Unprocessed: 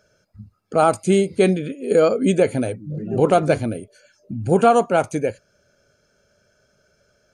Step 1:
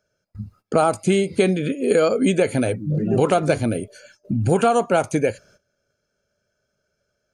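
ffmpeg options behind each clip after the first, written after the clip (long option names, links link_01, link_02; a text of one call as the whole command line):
ffmpeg -i in.wav -filter_complex "[0:a]acrossover=split=1200|3800[link_01][link_02][link_03];[link_01]acompressor=threshold=-24dB:ratio=4[link_04];[link_02]acompressor=threshold=-36dB:ratio=4[link_05];[link_03]acompressor=threshold=-43dB:ratio=4[link_06];[link_04][link_05][link_06]amix=inputs=3:normalize=0,agate=range=-19dB:threshold=-57dB:ratio=16:detection=peak,volume=7.5dB" out.wav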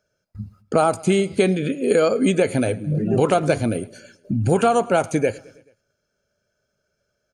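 ffmpeg -i in.wav -af "aecho=1:1:108|216|324|432:0.0708|0.0425|0.0255|0.0153" out.wav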